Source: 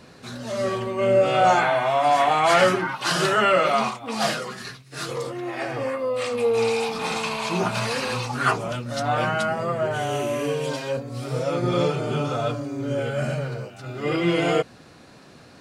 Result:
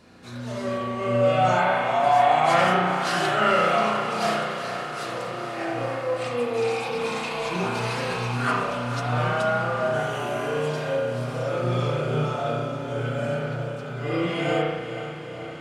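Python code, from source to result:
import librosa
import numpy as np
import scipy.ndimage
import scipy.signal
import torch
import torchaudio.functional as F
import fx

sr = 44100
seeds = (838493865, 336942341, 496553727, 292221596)

p1 = x + fx.echo_diffused(x, sr, ms=476, feedback_pct=72, wet_db=-10, dry=0)
p2 = fx.rev_spring(p1, sr, rt60_s=1.2, pass_ms=(33,), chirp_ms=60, drr_db=-3.0)
y = F.gain(torch.from_numpy(p2), -6.5).numpy()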